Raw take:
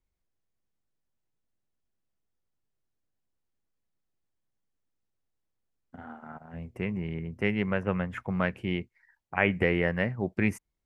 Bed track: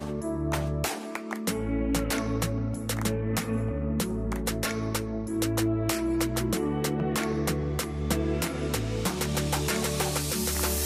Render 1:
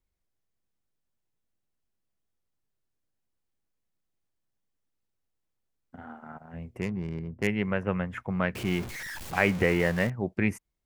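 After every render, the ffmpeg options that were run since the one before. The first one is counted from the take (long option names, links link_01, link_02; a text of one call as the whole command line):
ffmpeg -i in.wav -filter_complex "[0:a]asettb=1/sr,asplit=3[link_01][link_02][link_03];[link_01]atrim=end=6.814[link_04];[link_02]atrim=start=6.81:end=7.47,asetpts=PTS-STARTPTS,afade=type=in:duration=0.004:curve=qsin,afade=type=out:start_time=0.656:duration=0.004:curve=qsin,adynamicsmooth=sensitivity=5.5:basefreq=720[link_05];[link_03]atrim=start=7.466[link_06];[link_04][link_05]acrossfade=duration=0.004:curve1=hsin:curve2=qsin[link_07];[link_07][link_06]acrossfade=duration=0.004:curve1=qsin:curve2=hsin,asettb=1/sr,asplit=3[link_08][link_09][link_10];[link_08]atrim=end=8.554[link_11];[link_09]atrim=start=8.55:end=10.1,asetpts=PTS-STARTPTS,afade=type=in:duration=0.004:curve=qsin,afade=type=out:start_time=1.546:duration=0.004:curve=qsin,aeval=exprs='val(0)+0.5*0.0237*sgn(val(0))':channel_layout=same[link_12];[link_10]atrim=start=10.096[link_13];[link_11][link_12]acrossfade=duration=0.004:curve1=hsin:curve2=qsin[link_14];[link_14][link_13]acrossfade=duration=0.004:curve1=qsin:curve2=hsin" out.wav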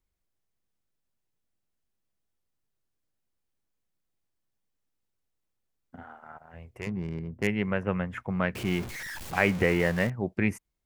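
ffmpeg -i in.wav -filter_complex "[0:a]asettb=1/sr,asplit=3[link_01][link_02][link_03];[link_01]atrim=end=6.034[link_04];[link_02]atrim=start=6.03:end=6.87,asetpts=PTS-STARTPTS,afade=type=in:duration=0.004:curve=qsin,afade=type=out:start_time=0.836:duration=0.004:curve=qsin,equalizer=frequency=210:width=1.1:gain=-15[link_05];[link_03]atrim=start=6.866[link_06];[link_04][link_05]acrossfade=duration=0.004:curve1=hsin:curve2=qsin[link_07];[link_07][link_06]acrossfade=duration=0.004:curve1=qsin:curve2=hsin" out.wav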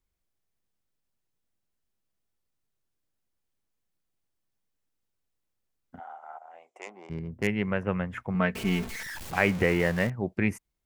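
ffmpeg -i in.wav -filter_complex "[0:a]asplit=3[link_01][link_02][link_03];[link_01]afade=type=out:start_time=5.98:duration=0.02[link_04];[link_02]highpass=frequency=410:width=0.5412,highpass=frequency=410:width=1.3066,equalizer=frequency=440:width_type=q:width=4:gain=-7,equalizer=frequency=760:width_type=q:width=4:gain=9,equalizer=frequency=1700:width_type=q:width=4:gain=-8,equalizer=frequency=2700:width_type=q:width=4:gain=-4,equalizer=frequency=4500:width_type=q:width=4:gain=-8,equalizer=frequency=7200:width_type=q:width=4:gain=4,lowpass=frequency=8500:width=0.5412,lowpass=frequency=8500:width=1.3066,afade=type=in:start_time=5.98:duration=0.02,afade=type=out:start_time=7.09:duration=0.02[link_05];[link_03]afade=type=in:start_time=7.09:duration=0.02[link_06];[link_04][link_05][link_06]amix=inputs=3:normalize=0,asettb=1/sr,asplit=3[link_07][link_08][link_09];[link_07]atrim=end=8.344[link_10];[link_08]atrim=start=8.34:end=9.06,asetpts=PTS-STARTPTS,afade=type=in:duration=0.004:curve=qsin,afade=type=out:start_time=0.716:duration=0.004:curve=qsin,aecho=1:1:4.5:0.65,atrim=end_sample=31752[link_11];[link_09]atrim=start=9.056[link_12];[link_10][link_11]acrossfade=duration=0.004:curve1=hsin:curve2=qsin[link_13];[link_13][link_12]acrossfade=duration=0.004:curve1=qsin:curve2=hsin" out.wav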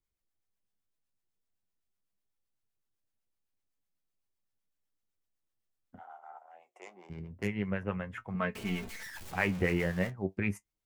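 ffmpeg -i in.wav -filter_complex "[0:a]acrossover=split=640[link_01][link_02];[link_01]aeval=exprs='val(0)*(1-0.5/2+0.5/2*cos(2*PI*7.9*n/s))':channel_layout=same[link_03];[link_02]aeval=exprs='val(0)*(1-0.5/2-0.5/2*cos(2*PI*7.9*n/s))':channel_layout=same[link_04];[link_03][link_04]amix=inputs=2:normalize=0,flanger=delay=9.2:depth=1.9:regen=51:speed=0.36:shape=sinusoidal" out.wav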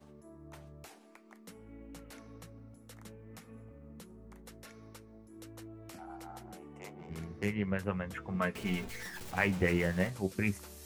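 ffmpeg -i in.wav -i bed.wav -filter_complex "[1:a]volume=-23dB[link_01];[0:a][link_01]amix=inputs=2:normalize=0" out.wav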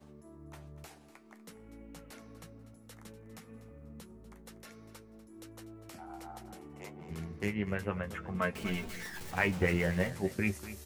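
ffmpeg -i in.wav -filter_complex "[0:a]asplit=2[link_01][link_02];[link_02]adelay=13,volume=-10.5dB[link_03];[link_01][link_03]amix=inputs=2:normalize=0,aecho=1:1:244|488|732:0.178|0.0445|0.0111" out.wav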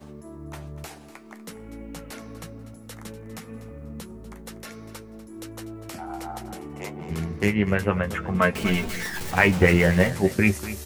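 ffmpeg -i in.wav -af "volume=12dB,alimiter=limit=-3dB:level=0:latency=1" out.wav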